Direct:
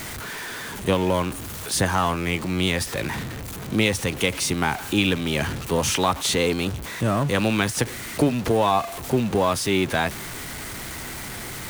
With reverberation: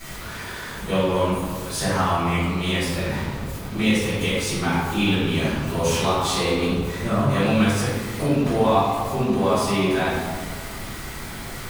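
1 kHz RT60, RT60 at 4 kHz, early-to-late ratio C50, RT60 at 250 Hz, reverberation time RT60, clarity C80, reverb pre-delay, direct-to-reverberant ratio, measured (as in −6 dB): 1.7 s, 0.95 s, −2.0 dB, 2.0 s, 1.7 s, 1.0 dB, 3 ms, −16.0 dB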